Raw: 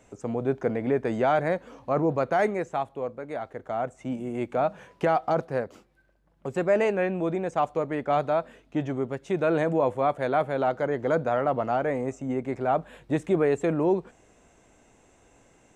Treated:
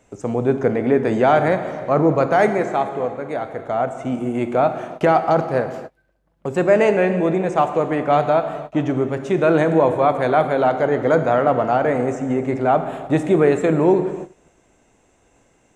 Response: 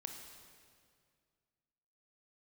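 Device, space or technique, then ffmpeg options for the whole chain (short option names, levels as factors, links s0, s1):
keyed gated reverb: -filter_complex "[0:a]asplit=3[s0][s1][s2];[1:a]atrim=start_sample=2205[s3];[s1][s3]afir=irnorm=-1:irlink=0[s4];[s2]apad=whole_len=694623[s5];[s4][s5]sidechaingate=range=0.0141:threshold=0.002:ratio=16:detection=peak,volume=2.37[s6];[s0][s6]amix=inputs=2:normalize=0"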